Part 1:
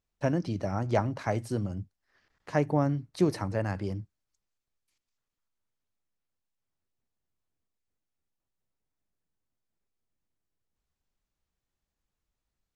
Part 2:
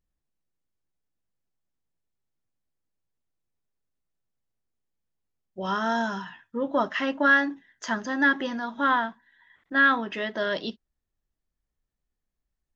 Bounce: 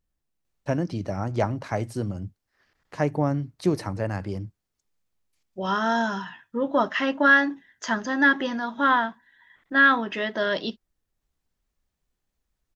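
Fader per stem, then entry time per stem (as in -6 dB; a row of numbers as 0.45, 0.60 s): +2.0, +2.5 dB; 0.45, 0.00 s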